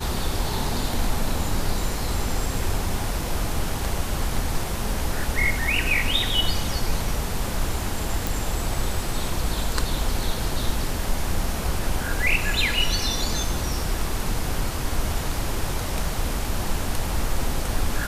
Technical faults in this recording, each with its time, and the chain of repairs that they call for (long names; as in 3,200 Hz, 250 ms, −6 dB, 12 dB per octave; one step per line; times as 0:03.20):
0:08.27: click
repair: click removal